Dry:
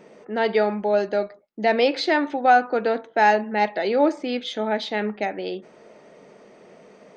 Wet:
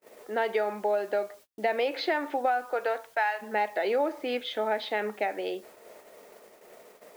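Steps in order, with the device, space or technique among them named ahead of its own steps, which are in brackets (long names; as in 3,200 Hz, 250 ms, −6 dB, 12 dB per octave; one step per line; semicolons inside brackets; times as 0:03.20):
0:02.64–0:03.41: high-pass filter 360 Hz → 1,200 Hz 12 dB per octave
baby monitor (band-pass filter 410–3,000 Hz; downward compressor 12 to 1, threshold −23 dBFS, peak gain reduction 12 dB; white noise bed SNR 29 dB; noise gate −50 dBFS, range −34 dB)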